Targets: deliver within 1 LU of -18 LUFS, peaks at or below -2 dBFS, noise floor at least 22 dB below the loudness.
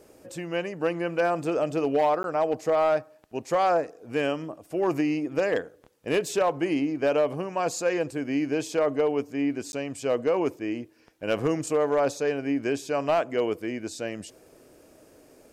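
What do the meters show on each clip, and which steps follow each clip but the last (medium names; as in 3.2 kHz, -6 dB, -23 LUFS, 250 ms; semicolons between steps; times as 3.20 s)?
clipped samples 0.6%; clipping level -16.5 dBFS; dropouts 2; longest dropout 11 ms; loudness -27.0 LUFS; peak level -16.5 dBFS; loudness target -18.0 LUFS
-> clip repair -16.5 dBFS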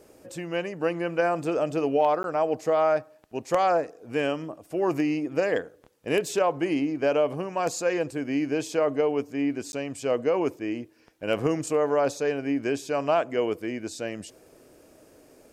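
clipped samples 0.0%; dropouts 2; longest dropout 11 ms
-> interpolate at 2.23/9.72 s, 11 ms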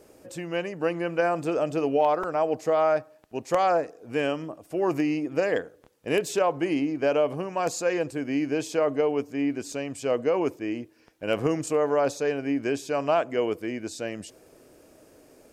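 dropouts 0; loudness -26.5 LUFS; peak level -7.5 dBFS; loudness target -18.0 LUFS
-> trim +8.5 dB; peak limiter -2 dBFS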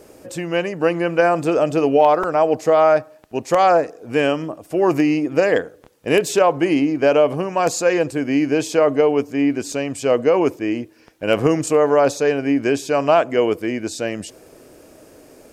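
loudness -18.0 LUFS; peak level -2.0 dBFS; noise floor -48 dBFS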